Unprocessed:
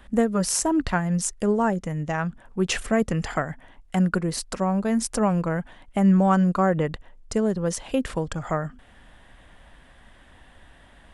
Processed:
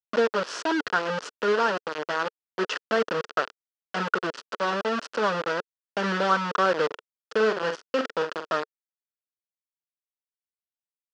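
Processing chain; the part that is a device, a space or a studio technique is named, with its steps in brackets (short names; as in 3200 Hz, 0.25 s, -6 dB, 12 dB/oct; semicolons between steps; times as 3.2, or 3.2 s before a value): hand-held game console (bit-crush 4-bit; speaker cabinet 430–4500 Hz, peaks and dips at 450 Hz +5 dB, 770 Hz -7 dB, 1400 Hz +6 dB, 2200 Hz -9 dB, 3800 Hz -7 dB); 6.86–8.49 doubler 46 ms -7 dB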